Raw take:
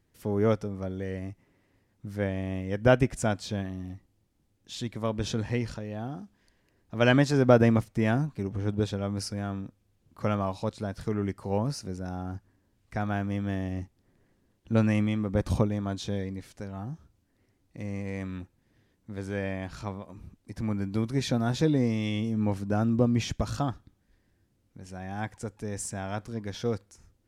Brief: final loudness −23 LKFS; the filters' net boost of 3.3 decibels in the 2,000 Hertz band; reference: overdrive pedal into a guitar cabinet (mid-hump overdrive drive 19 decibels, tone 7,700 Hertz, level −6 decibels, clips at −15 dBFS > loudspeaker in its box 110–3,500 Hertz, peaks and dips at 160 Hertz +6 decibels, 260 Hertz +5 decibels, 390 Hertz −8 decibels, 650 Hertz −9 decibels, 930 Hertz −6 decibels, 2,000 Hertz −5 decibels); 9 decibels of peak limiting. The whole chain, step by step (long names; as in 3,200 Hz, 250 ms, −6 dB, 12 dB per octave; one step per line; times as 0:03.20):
parametric band 2,000 Hz +7.5 dB
brickwall limiter −15 dBFS
mid-hump overdrive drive 19 dB, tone 7,700 Hz, level −6 dB, clips at −15 dBFS
loudspeaker in its box 110–3,500 Hz, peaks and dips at 160 Hz +6 dB, 260 Hz +5 dB, 390 Hz −8 dB, 650 Hz −9 dB, 930 Hz −6 dB, 2,000 Hz −5 dB
level +5.5 dB